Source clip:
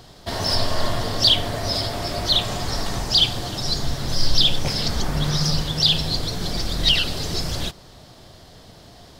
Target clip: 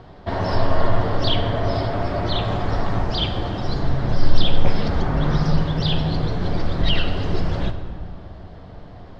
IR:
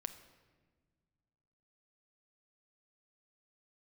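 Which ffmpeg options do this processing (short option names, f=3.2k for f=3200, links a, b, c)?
-filter_complex "[0:a]lowpass=1.7k[a];[1:a]atrim=start_sample=2205,asetrate=25578,aresample=44100[b];[a][b]afir=irnorm=-1:irlink=0,volume=4dB"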